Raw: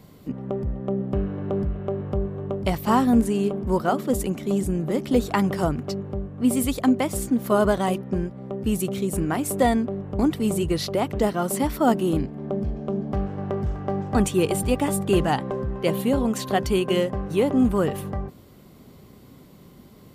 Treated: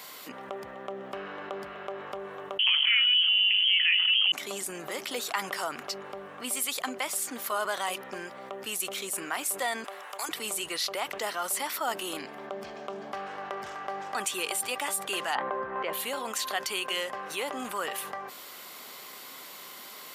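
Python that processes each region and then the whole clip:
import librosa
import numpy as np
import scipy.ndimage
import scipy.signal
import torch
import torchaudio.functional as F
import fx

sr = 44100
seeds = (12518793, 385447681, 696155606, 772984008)

y = fx.chain(x, sr, fx.freq_invert(carrier_hz=3200),
    fx.env_flatten(amount_pct=70), at=(2.59, 4.32))
y = fx.chain(y, sr, fx.highpass(hz=770.0, slope=12),
    fx.peak_eq(hz=12000.0, db=14.5, octaves=1.6), at=(9.84, 10.29))
y = fx.chain(y, sr, fx.lowpass(hz=1600.0, slope=12),
    fx.env_flatten(amount_pct=100), at=(15.35, 15.93))
y = scipy.signal.sosfilt(scipy.signal.butter(2, 1200.0, 'highpass', fs=sr, output='sos'), y)
y = fx.env_flatten(y, sr, amount_pct=50)
y = F.gain(torch.from_numpy(y), -7.5).numpy()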